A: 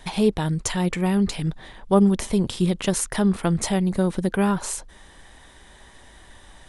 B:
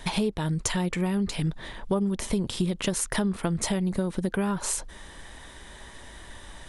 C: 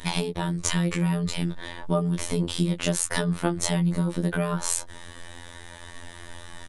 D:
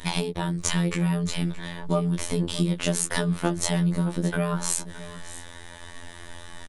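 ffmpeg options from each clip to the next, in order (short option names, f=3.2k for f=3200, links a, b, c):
-af "bandreject=f=770:w=16,acompressor=threshold=-27dB:ratio=6,volume=3.5dB"
-filter_complex "[0:a]asplit=2[a][b];[b]adelay=15,volume=-3dB[c];[a][c]amix=inputs=2:normalize=0,afftfilt=real='hypot(re,im)*cos(PI*b)':imag='0':win_size=2048:overlap=0.75,volume=4dB"
-af "aecho=1:1:620:0.158"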